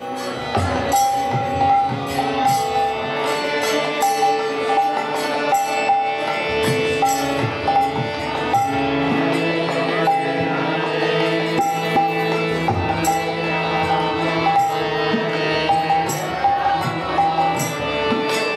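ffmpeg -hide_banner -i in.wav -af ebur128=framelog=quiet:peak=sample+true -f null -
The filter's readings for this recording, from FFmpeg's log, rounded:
Integrated loudness:
  I:         -19.2 LUFS
  Threshold: -29.2 LUFS
Loudness range:
  LRA:         0.5 LU
  Threshold: -39.2 LUFS
  LRA low:   -19.4 LUFS
  LRA high:  -18.9 LUFS
Sample peak:
  Peak:       -6.6 dBFS
True peak:
  Peak:       -6.6 dBFS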